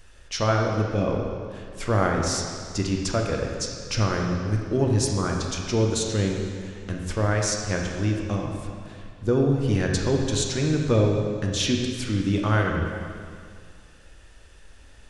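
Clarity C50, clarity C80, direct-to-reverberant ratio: 2.0 dB, 3.5 dB, 0.5 dB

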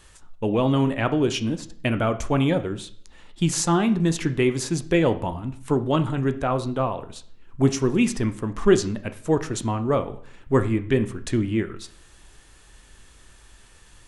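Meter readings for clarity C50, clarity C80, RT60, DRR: 14.5 dB, 18.5 dB, 0.55 s, 10.0 dB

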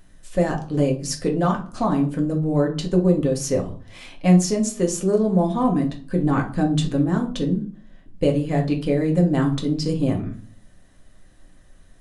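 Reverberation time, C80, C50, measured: 0.40 s, 16.5 dB, 11.5 dB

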